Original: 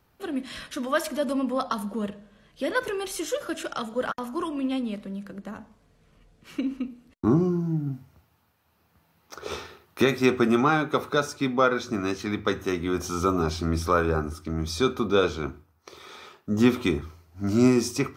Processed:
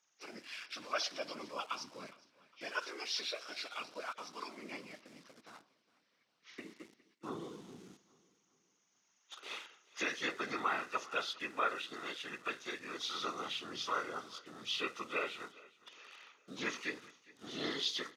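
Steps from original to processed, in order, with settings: knee-point frequency compression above 1.3 kHz 1.5:1; whisper effect; in parallel at -9 dB: small samples zeroed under -38 dBFS; on the sum: band-pass 120–6500 Hz; differentiator; on a send: feedback delay 410 ms, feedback 42%, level -22 dB; on the sum: trim +2 dB

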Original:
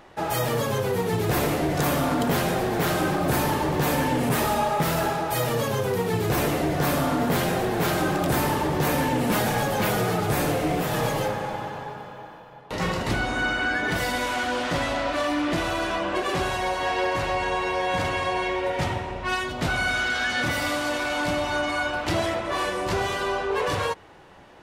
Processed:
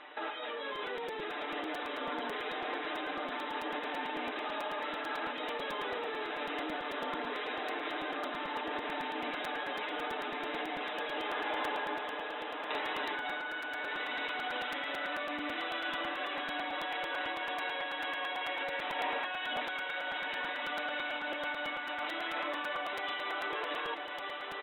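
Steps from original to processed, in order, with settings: tilt shelf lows -7 dB, about 850 Hz; comb 6.7 ms, depth 82%; peak limiter -18 dBFS, peak gain reduction 11 dB; compressor with a negative ratio -31 dBFS, ratio -1; brick-wall FIR band-pass 210–4000 Hz; distance through air 69 m; echo that smears into a reverb 1262 ms, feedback 48%, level -4 dB; crackling interface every 0.11 s, samples 256, repeat, from 0.75 s; trim -6.5 dB

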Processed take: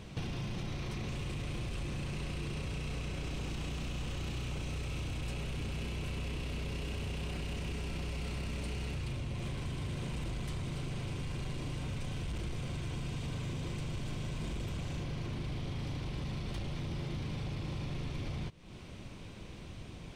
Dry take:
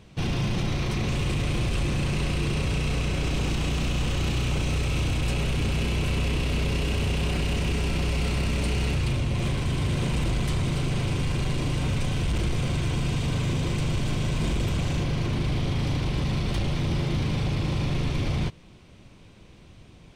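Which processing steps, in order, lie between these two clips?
compression, threshold -40 dBFS, peak gain reduction 16 dB; trim +3 dB

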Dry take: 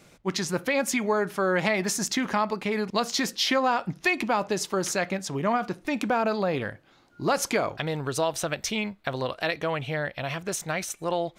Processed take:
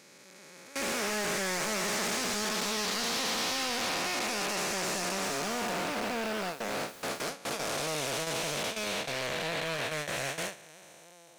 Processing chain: spectral blur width 1270 ms; high-pass 56 Hz 24 dB/octave; gate with hold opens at -24 dBFS; tilt EQ +3 dB/octave; saturation -33.5 dBFS, distortion -9 dB; 5.22–7.29 s: added noise white -57 dBFS; loudspeaker Doppler distortion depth 0.21 ms; trim +6 dB

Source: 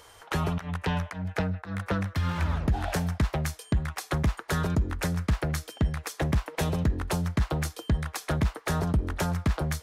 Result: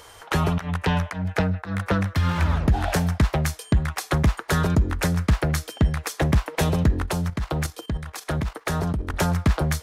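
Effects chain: 7.06–9.14 s: level held to a coarse grid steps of 10 dB; trim +6 dB

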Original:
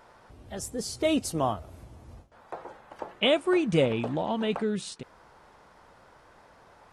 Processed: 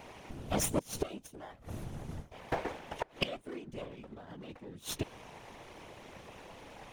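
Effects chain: comb filter that takes the minimum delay 0.31 ms; inverted gate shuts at -24 dBFS, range -26 dB; whisper effect; trim +6.5 dB

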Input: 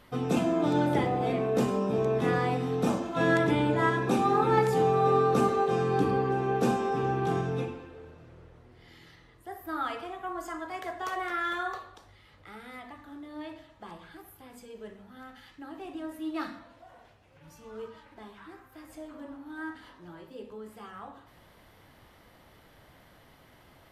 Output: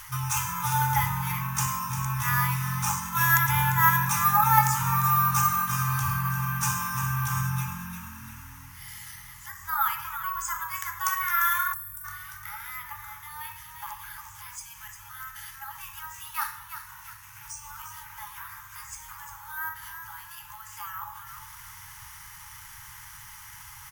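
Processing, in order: FFT band-reject 130–810 Hz; careless resampling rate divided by 3×, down filtered, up hold; resonant high shelf 5.1 kHz +8.5 dB, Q 3; frequency-shifting echo 348 ms, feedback 31%, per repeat +45 Hz, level -11.5 dB; time-frequency box 11.73–12.05 s, 200–7400 Hz -18 dB; tape noise reduction on one side only encoder only; trim +7.5 dB

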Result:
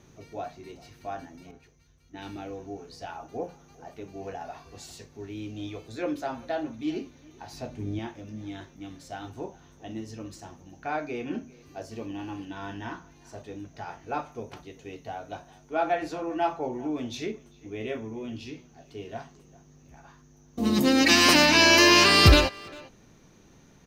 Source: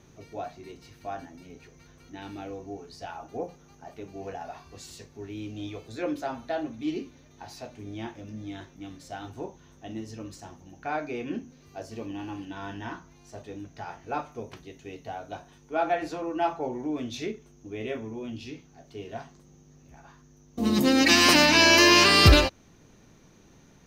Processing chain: 7.53–7.99 s: bass shelf 380 Hz +9.5 dB; speakerphone echo 400 ms, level -21 dB; 1.51–2.37 s: three bands expanded up and down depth 100%

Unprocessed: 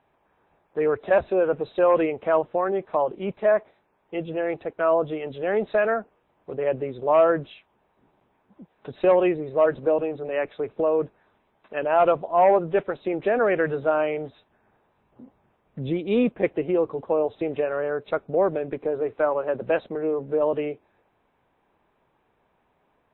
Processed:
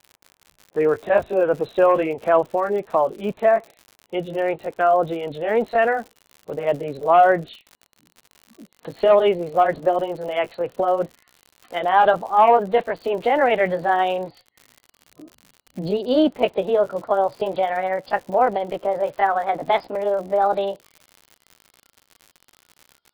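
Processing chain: pitch bend over the whole clip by +5.5 st starting unshifted; spectral noise reduction 20 dB; crackle 97 per s -38 dBFS; trim +4.5 dB

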